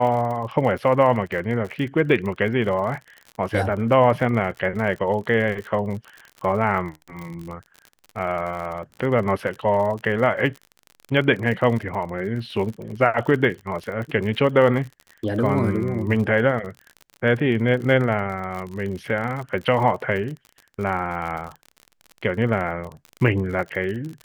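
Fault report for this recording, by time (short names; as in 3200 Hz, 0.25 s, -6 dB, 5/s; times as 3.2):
crackle 47/s -30 dBFS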